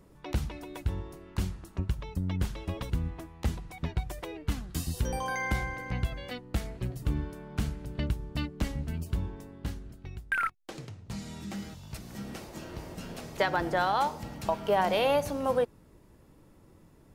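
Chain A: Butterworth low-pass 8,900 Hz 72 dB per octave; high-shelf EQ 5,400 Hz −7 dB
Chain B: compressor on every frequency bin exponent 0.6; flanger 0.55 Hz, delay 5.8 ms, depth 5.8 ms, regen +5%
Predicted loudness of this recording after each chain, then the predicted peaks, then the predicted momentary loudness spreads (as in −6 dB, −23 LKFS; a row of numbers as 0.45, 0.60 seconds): −33.5, −32.5 LKFS; −14.5, −12.0 dBFS; 14, 11 LU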